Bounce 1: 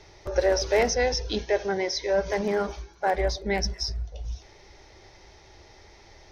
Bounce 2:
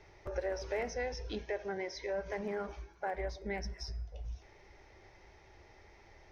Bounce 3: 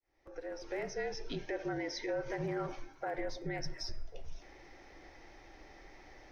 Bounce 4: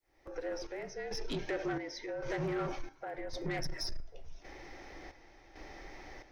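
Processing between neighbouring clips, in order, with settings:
high shelf with overshoot 3,000 Hz −6 dB, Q 1.5; hum removal 313.3 Hz, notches 30; downward compressor 2 to 1, threshold −31 dBFS, peak gain reduction 8 dB; level −7 dB
fade in at the beginning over 1.64 s; brickwall limiter −32.5 dBFS, peak gain reduction 7 dB; frequency shifter −44 Hz; level +4 dB
square-wave tremolo 0.9 Hz, depth 65%, duty 60%; soft clipping −36 dBFS, distortion −12 dB; level +6 dB

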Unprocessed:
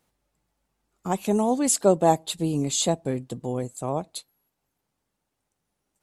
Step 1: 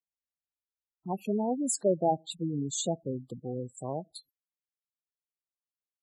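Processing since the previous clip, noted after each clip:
noise gate −47 dBFS, range −30 dB
gate on every frequency bin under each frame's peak −10 dB strong
level −6.5 dB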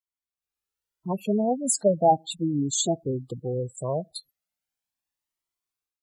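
automatic gain control
flanger whose copies keep moving one way rising 0.37 Hz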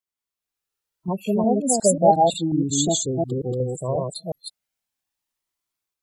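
delay that plays each chunk backwards 180 ms, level −1 dB
level +2 dB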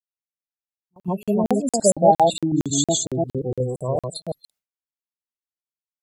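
echo ahead of the sound 149 ms −24 dB
noise gate with hold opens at −40 dBFS
regular buffer underruns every 0.23 s, samples 2,048, zero, from 0:00.54
level +1 dB

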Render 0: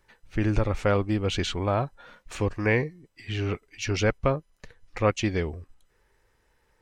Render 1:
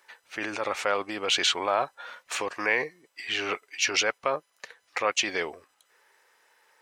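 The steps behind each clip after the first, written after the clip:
in parallel at +1.5 dB: compressor whose output falls as the input rises −26 dBFS, ratio −0.5
on the sum: high-pass filter 700 Hz 12 dB per octave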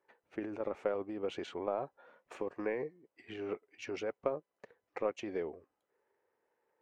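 transient designer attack +7 dB, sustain +3 dB
drawn EQ curve 400 Hz 0 dB, 1,300 Hz −16 dB, 2,400 Hz −20 dB, 4,200 Hz −28 dB
level −5 dB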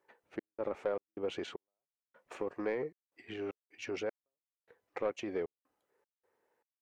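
gate pattern "xx.xx.xx...xx" 77 BPM −60 dB
soft clipping −26.5 dBFS, distortion −18 dB
level +2 dB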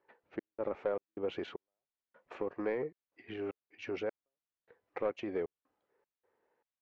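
high-frequency loss of the air 200 metres
level +1 dB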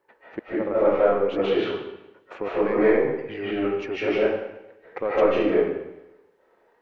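convolution reverb RT60 0.90 s, pre-delay 110 ms, DRR −10 dB
level +6.5 dB

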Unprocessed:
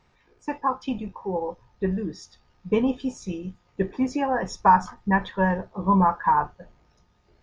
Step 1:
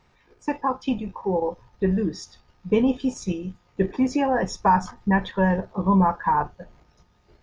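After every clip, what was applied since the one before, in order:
dynamic equaliser 1,200 Hz, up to −6 dB, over −35 dBFS, Q 1.2
in parallel at +0.5 dB: output level in coarse steps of 15 dB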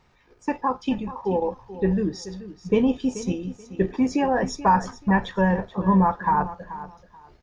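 repeating echo 432 ms, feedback 21%, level −14.5 dB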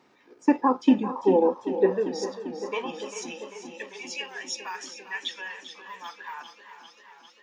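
high-pass filter sweep 280 Hz → 2,900 Hz, 0:01.27–0:04.00
feedback echo with a swinging delay time 396 ms, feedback 73%, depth 59 cents, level −13 dB

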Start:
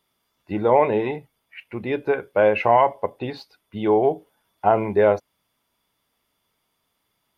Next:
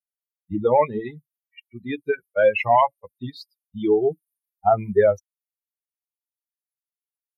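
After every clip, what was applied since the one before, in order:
spectral dynamics exaggerated over time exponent 3
level +4.5 dB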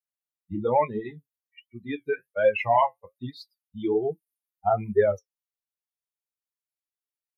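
flanger 1.2 Hz, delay 7.5 ms, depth 5.3 ms, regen −50%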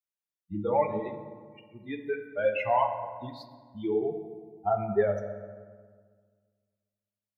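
convolution reverb RT60 1.7 s, pre-delay 5 ms, DRR 5.5 dB
level −5 dB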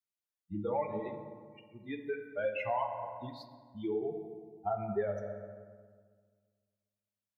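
downward compressor 2 to 1, threshold −29 dBFS, peak gain reduction 6 dB
level −3.5 dB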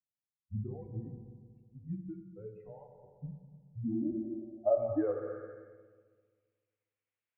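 low-pass filter sweep 230 Hz → 2,400 Hz, 0:03.77–0:05.81
single-sideband voice off tune −100 Hz 220–3,600 Hz

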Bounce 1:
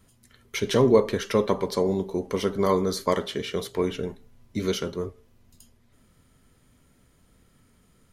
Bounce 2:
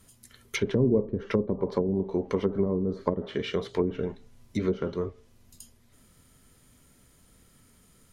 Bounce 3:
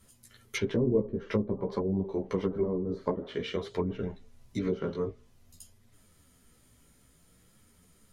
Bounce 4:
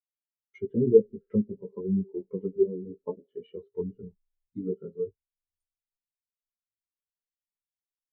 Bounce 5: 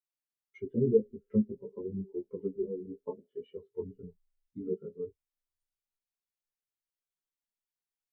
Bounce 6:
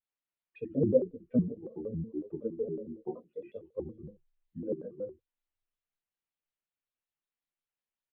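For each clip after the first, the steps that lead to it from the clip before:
high-shelf EQ 4,700 Hz +9 dB; treble cut that deepens with the level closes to 310 Hz, closed at −19 dBFS
multi-voice chorus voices 2, 0.51 Hz, delay 14 ms, depth 4.6 ms
automatic gain control gain up to 8.5 dB; hollow resonant body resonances 870/1,300/2,900 Hz, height 6 dB, ringing for 45 ms; every bin expanded away from the loudest bin 2.5 to 1
multi-voice chorus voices 6, 0.49 Hz, delay 11 ms, depth 3.6 ms
downsampling to 8,000 Hz; single-tap delay 72 ms −12.5 dB; pitch modulation by a square or saw wave square 5.4 Hz, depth 250 cents

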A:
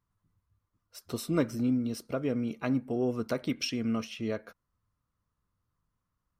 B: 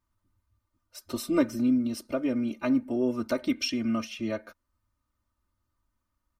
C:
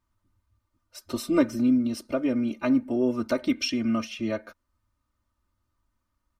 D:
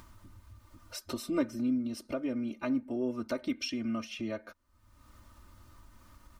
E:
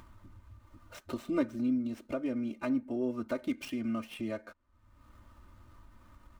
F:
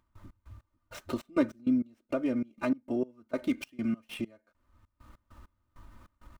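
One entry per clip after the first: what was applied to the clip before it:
comb filter 3.3 ms, depth 89%
high-shelf EQ 10,000 Hz −6 dB; level +2.5 dB
upward compression, threshold −23 dBFS; level −8.5 dB
running median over 9 samples
gate pattern ".x.x..xx" 99 BPM −24 dB; level +4 dB

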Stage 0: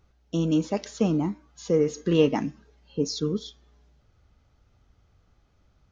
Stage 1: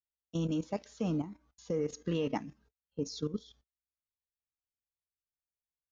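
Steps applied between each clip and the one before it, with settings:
noise gate −50 dBFS, range −36 dB
parametric band 370 Hz −6.5 dB 0.25 octaves
output level in coarse steps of 13 dB
level −5 dB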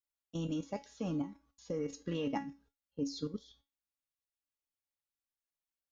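tuned comb filter 280 Hz, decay 0.25 s, harmonics all, mix 80%
level +7.5 dB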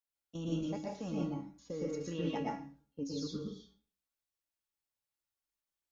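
convolution reverb RT60 0.40 s, pre-delay 108 ms, DRR −3 dB
level −4 dB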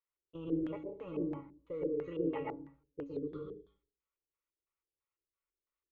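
phaser with its sweep stopped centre 1,100 Hz, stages 8
tape wow and flutter 20 cents
auto-filter low-pass square 3 Hz 390–1,700 Hz
level +1 dB

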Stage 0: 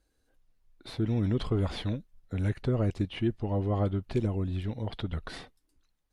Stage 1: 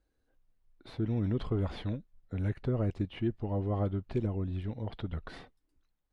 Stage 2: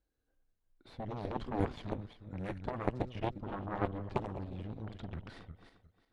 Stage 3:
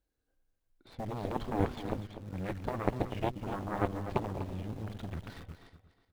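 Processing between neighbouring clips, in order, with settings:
high-shelf EQ 4,000 Hz −12 dB; level −3 dB
feedback delay that plays each chunk backwards 178 ms, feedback 46%, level −7 dB; harmonic generator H 3 −7 dB, 4 −18 dB, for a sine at −18.5 dBFS; level +3 dB
in parallel at −8.5 dB: bit reduction 8 bits; on the sum: single-tap delay 246 ms −11.5 dB

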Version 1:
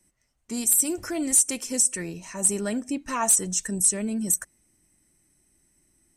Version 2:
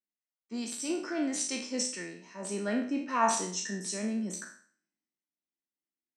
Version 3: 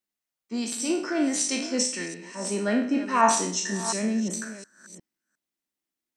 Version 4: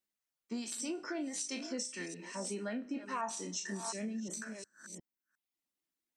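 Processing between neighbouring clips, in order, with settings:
peak hold with a decay on every bin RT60 0.64 s; Chebyshev band-pass filter 210–5,100 Hz, order 3; multiband upward and downward expander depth 70%; level −4 dB
delay that plays each chunk backwards 357 ms, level −13 dB; level +6.5 dB
downward compressor 4 to 1, threshold −35 dBFS, peak gain reduction 17 dB; reverb reduction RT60 0.65 s; level −2 dB

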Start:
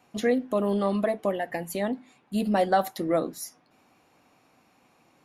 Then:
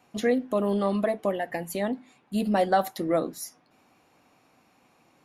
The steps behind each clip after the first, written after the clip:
no processing that can be heard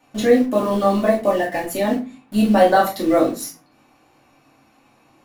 in parallel at −8.5 dB: bit-depth reduction 6 bits, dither none
on the sum: convolution reverb RT60 0.30 s, pre-delay 3 ms, DRR −4.5 dB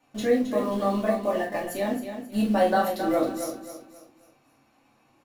repeating echo 268 ms, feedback 35%, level −9 dB
level −8 dB

